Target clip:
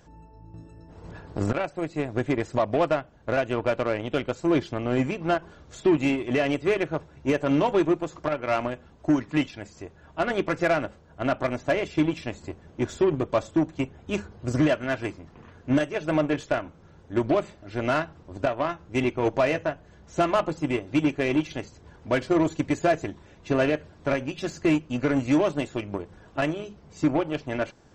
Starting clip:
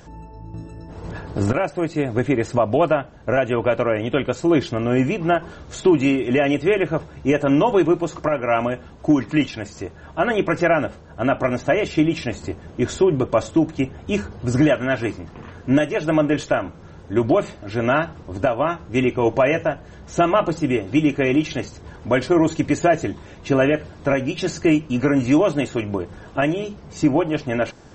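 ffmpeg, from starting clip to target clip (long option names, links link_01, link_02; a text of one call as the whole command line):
ffmpeg -i in.wav -af "aeval=exprs='0.473*(cos(1*acos(clip(val(0)/0.473,-1,1)))-cos(1*PI/2))+0.0299*(cos(7*acos(clip(val(0)/0.473,-1,1)))-cos(7*PI/2))':channel_layout=same,volume=-5.5dB" out.wav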